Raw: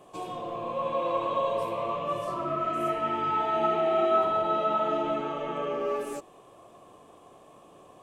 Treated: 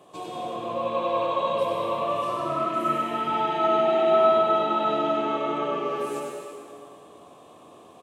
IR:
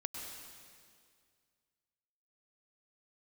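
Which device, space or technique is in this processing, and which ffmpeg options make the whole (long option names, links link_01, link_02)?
PA in a hall: -filter_complex "[0:a]highpass=100,equalizer=frequency=3800:width_type=o:width=0.41:gain=5,aecho=1:1:96:0.531[link_01];[1:a]atrim=start_sample=2205[link_02];[link_01][link_02]afir=irnorm=-1:irlink=0,volume=3dB"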